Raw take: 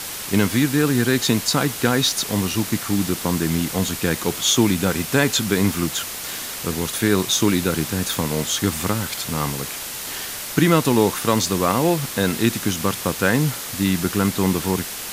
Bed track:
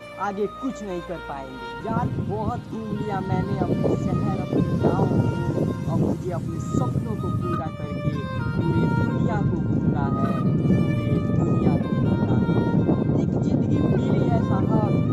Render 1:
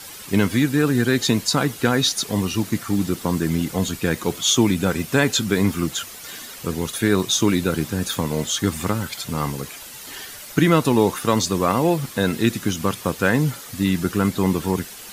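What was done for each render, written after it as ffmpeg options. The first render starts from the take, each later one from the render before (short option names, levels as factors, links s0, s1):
-af "afftdn=nr=10:nf=-31"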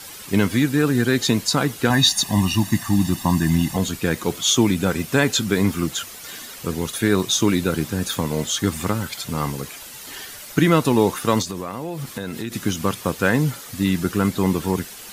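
-filter_complex "[0:a]asettb=1/sr,asplit=3[s0][s1][s2];[s0]atrim=end=1.904[s3];[s1]atrim=start=1.9:end=3.77,asetpts=PTS-STARTPTS,afade=t=in:d=0.004:c=qsin,afade=t=out:st=1.866:d=0.004:c=qsin,aecho=1:1:1.1:0.97,atrim=end_sample=82467[s4];[s2]atrim=start=3.766[s5];[s3][s4]acrossfade=d=0.004:c1=hsin:c2=qsin[s6];[s6][s5]acrossfade=d=0.004:c1=qsin:c2=hsin,asettb=1/sr,asplit=3[s7][s8][s9];[s7]atrim=end=11.424[s10];[s8]atrim=start=11.42:end=12.52,asetpts=PTS-STARTPTS,afade=t=in:d=0.004:c=qsin,afade=t=out:st=1.096:d=0.004:c=qsin,acompressor=threshold=0.0562:ratio=5:attack=3.2:release=140:knee=1:detection=peak[s11];[s9]atrim=start=12.516[s12];[s10][s11]acrossfade=d=0.004:c1=hsin:c2=qsin[s13];[s13][s12]acrossfade=d=0.004:c1=qsin:c2=hsin"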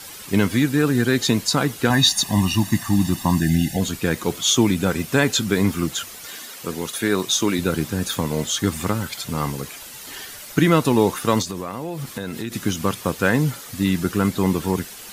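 -filter_complex "[0:a]asplit=3[s0][s1][s2];[s0]afade=t=out:st=3.4:d=0.02[s3];[s1]asuperstop=centerf=1100:order=12:qfactor=1.8,afade=t=in:st=3.4:d=0.02,afade=t=out:st=3.8:d=0.02[s4];[s2]afade=t=in:st=3.8:d=0.02[s5];[s3][s4][s5]amix=inputs=3:normalize=0,asettb=1/sr,asplit=3[s6][s7][s8];[s6]atrim=end=6.264[s9];[s7]atrim=start=6.26:end=7.59,asetpts=PTS-STARTPTS,afade=t=in:d=0.004:c=qsin,afade=t=out:st=1.326:d=0.004:c=qsin,highpass=f=250:p=1[s10];[s8]atrim=start=7.586[s11];[s9][s10]acrossfade=d=0.004:c1=hsin:c2=qsin[s12];[s12][s11]acrossfade=d=0.004:c1=qsin:c2=hsin"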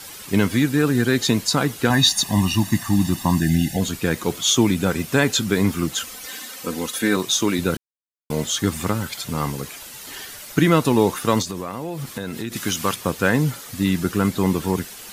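-filter_complex "[0:a]asettb=1/sr,asplit=3[s0][s1][s2];[s0]atrim=end=5.934[s3];[s1]atrim=start=5.93:end=7.17,asetpts=PTS-STARTPTS,afade=t=in:d=0.004:c=qsin,afade=t=out:st=1.236:d=0.004:c=qsin,aecho=1:1:3.9:0.65,atrim=end_sample=54684[s4];[s2]atrim=start=7.166[s5];[s3][s4]acrossfade=d=0.004:c1=hsin:c2=qsin[s6];[s6][s5]acrossfade=d=0.004:c1=qsin:c2=hsin,asettb=1/sr,asplit=3[s7][s8][s9];[s7]atrim=end=12.564[s10];[s8]atrim=start=12.56:end=12.96,asetpts=PTS-STARTPTS,afade=t=in:d=0.004:c=qsin,afade=t=out:st=0.396:d=0.004:c=qsin,tiltshelf=f=640:g=-5[s11];[s9]atrim=start=12.956[s12];[s10][s11]acrossfade=d=0.004:c1=hsin:c2=qsin[s13];[s13][s12]acrossfade=d=0.004:c1=qsin:c2=hsin,asplit=3[s14][s15][s16];[s14]atrim=end=7.77,asetpts=PTS-STARTPTS,afade=t=out:st=7.766:d=0.004:c=hsin[s17];[s15]atrim=start=7.77:end=8.3,asetpts=PTS-STARTPTS,volume=0[s18];[s16]atrim=start=8.3,asetpts=PTS-STARTPTS,afade=t=in:d=0.004:c=hsin[s19];[s17][s18][s19]concat=n=3:v=0:a=1"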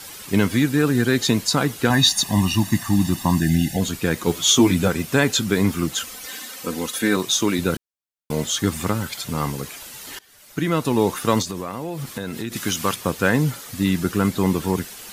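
-filter_complex "[0:a]asettb=1/sr,asplit=3[s0][s1][s2];[s0]atrim=end=4.264[s3];[s1]atrim=start=4.26:end=4.88,asetpts=PTS-STARTPTS,afade=t=in:d=0.004:c=qsin,afade=t=out:st=0.616:d=0.004:c=qsin,asplit=2[s4][s5];[s5]adelay=12,volume=0.708[s6];[s4][s6]amix=inputs=2:normalize=0,atrim=end_sample=27342[s7];[s2]atrim=start=4.876[s8];[s3][s7]acrossfade=d=0.004:c1=hsin:c2=qsin[s9];[s9][s8]acrossfade=d=0.004:c1=qsin:c2=hsin,asplit=2[s10][s11];[s10]atrim=end=10.19,asetpts=PTS-STARTPTS,afade=t=out:st=10.186:d=0.004:c=hsin:silence=0.0630957[s12];[s11]atrim=start=10.19,asetpts=PTS-STARTPTS,afade=t=in:d=1.02:silence=0.0630957[s13];[s12][s13]concat=n=2:v=0:a=1"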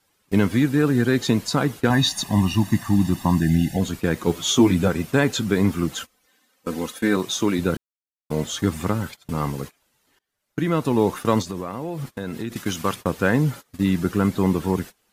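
-af "highshelf=f=2300:g=-8,agate=range=0.0631:threshold=0.0251:ratio=16:detection=peak"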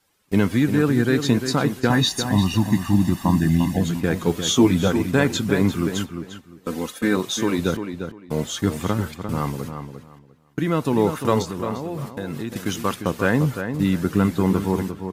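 -filter_complex "[0:a]asplit=2[s0][s1];[s1]adelay=349,lowpass=f=3300:p=1,volume=0.398,asplit=2[s2][s3];[s3]adelay=349,lowpass=f=3300:p=1,volume=0.21,asplit=2[s4][s5];[s5]adelay=349,lowpass=f=3300:p=1,volume=0.21[s6];[s0][s2][s4][s6]amix=inputs=4:normalize=0"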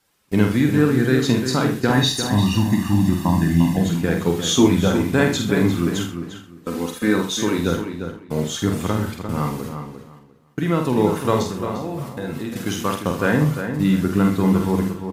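-filter_complex "[0:a]asplit=2[s0][s1];[s1]adelay=47,volume=0.562[s2];[s0][s2]amix=inputs=2:normalize=0,asplit=2[s3][s4];[s4]aecho=0:1:78:0.282[s5];[s3][s5]amix=inputs=2:normalize=0"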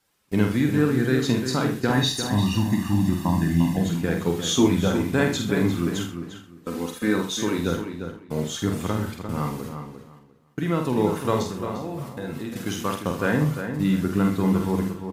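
-af "volume=0.631"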